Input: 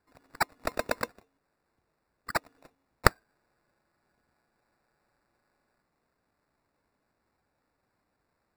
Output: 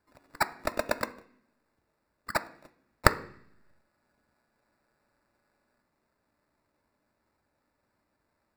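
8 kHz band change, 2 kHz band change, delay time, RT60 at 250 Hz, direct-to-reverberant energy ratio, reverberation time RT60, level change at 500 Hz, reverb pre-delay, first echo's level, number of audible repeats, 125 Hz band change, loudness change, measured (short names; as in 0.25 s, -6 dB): 0.0 dB, +0.5 dB, none, 1.0 s, 9.0 dB, 0.60 s, +1.0 dB, 3 ms, none, none, 0.0 dB, +0.5 dB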